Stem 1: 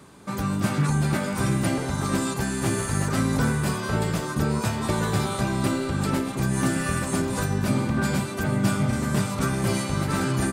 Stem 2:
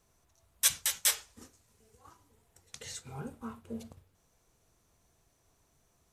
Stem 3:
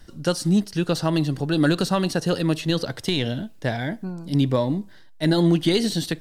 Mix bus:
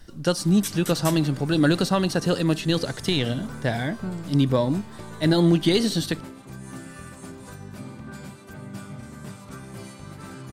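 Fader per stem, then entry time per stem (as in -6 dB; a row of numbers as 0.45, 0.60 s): -15.0, -6.0, 0.0 dB; 0.10, 0.00, 0.00 s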